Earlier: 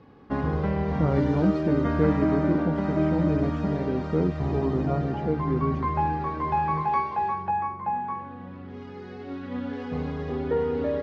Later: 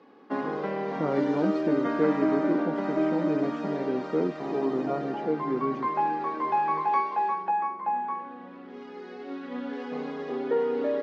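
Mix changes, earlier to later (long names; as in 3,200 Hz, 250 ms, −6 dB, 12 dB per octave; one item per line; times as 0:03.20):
speech: add parametric band 130 Hz +11.5 dB 0.44 octaves
master: add high-pass filter 250 Hz 24 dB per octave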